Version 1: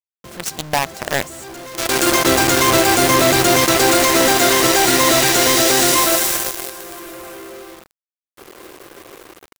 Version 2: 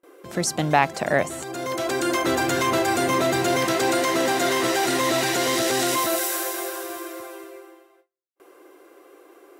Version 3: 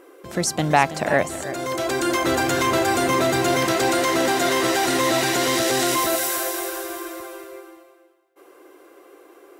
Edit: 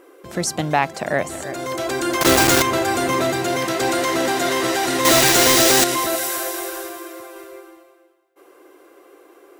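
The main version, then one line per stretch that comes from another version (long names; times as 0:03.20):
3
0:00.61–0:01.26: punch in from 2
0:02.21–0:02.62: punch in from 1
0:03.32–0:03.80: punch in from 2
0:05.05–0:05.84: punch in from 1
0:06.89–0:07.36: punch in from 2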